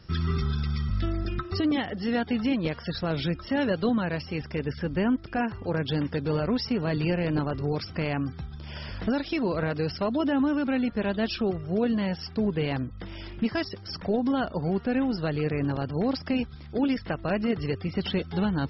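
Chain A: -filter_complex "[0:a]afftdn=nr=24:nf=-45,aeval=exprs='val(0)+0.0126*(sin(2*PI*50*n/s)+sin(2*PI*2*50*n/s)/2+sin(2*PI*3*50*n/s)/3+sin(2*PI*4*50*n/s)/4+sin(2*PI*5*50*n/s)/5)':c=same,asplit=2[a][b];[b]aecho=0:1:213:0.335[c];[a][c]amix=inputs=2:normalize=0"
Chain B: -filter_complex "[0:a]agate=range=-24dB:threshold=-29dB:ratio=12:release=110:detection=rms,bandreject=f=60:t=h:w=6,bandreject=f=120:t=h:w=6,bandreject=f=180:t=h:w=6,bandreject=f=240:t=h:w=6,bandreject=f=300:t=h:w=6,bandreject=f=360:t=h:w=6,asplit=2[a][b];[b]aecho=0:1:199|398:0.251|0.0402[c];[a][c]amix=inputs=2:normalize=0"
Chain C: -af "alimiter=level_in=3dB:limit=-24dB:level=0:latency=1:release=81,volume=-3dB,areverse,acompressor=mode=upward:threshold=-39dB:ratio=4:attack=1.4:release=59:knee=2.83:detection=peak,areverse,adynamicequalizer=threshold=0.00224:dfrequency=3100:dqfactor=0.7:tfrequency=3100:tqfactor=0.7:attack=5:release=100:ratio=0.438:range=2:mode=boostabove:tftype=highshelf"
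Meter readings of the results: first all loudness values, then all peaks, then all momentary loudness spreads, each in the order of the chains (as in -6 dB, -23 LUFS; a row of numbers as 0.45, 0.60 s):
-28.0, -28.5, -35.0 LUFS; -14.0, -14.5, -22.5 dBFS; 5, 6, 4 LU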